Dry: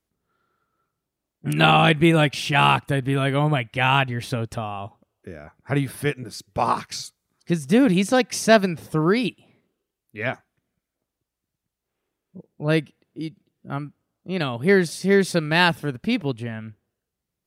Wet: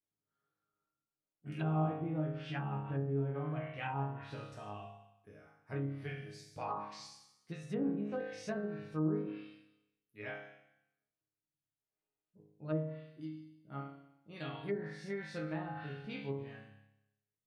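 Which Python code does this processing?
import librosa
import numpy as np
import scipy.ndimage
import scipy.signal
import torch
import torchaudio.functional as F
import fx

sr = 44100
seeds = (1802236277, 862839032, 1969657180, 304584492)

y = fx.resonator_bank(x, sr, root=44, chord='sus4', decay_s=0.85)
y = fx.env_lowpass_down(y, sr, base_hz=660.0, full_db=-33.5)
y = y * 10.0 ** (2.0 / 20.0)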